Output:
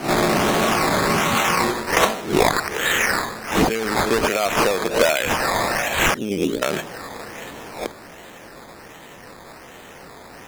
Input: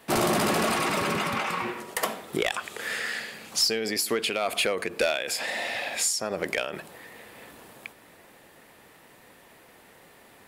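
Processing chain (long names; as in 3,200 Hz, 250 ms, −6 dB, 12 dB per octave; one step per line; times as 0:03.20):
peak hold with a rise ahead of every peak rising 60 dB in 0.39 s
0:06.14–0:06.62: drawn EQ curve 160 Hz 0 dB, 290 Hz +7 dB, 430 Hz −2 dB, 680 Hz −25 dB
speech leveller within 4 dB 0.5 s
sample-and-hold swept by an LFO 12×, swing 60% 1.3 Hz
highs frequency-modulated by the lows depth 0.15 ms
level +7 dB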